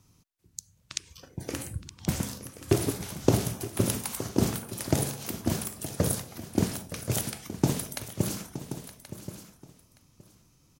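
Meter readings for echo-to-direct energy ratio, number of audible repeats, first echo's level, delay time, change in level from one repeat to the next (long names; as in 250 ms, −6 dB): −10.5 dB, 3, −14.0 dB, 919 ms, repeats not evenly spaced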